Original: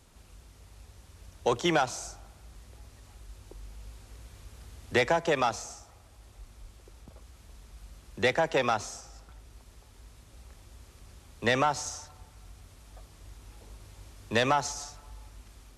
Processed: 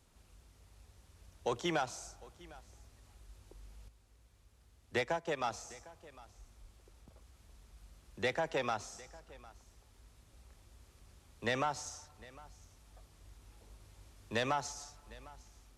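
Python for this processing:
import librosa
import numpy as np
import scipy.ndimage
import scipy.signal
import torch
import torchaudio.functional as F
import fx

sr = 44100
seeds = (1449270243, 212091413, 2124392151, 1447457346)

y = x + 10.0 ** (-21.0 / 20.0) * np.pad(x, (int(754 * sr / 1000.0), 0))[:len(x)]
y = fx.upward_expand(y, sr, threshold_db=-38.0, expansion=1.5, at=(3.88, 5.44))
y = y * librosa.db_to_amplitude(-8.5)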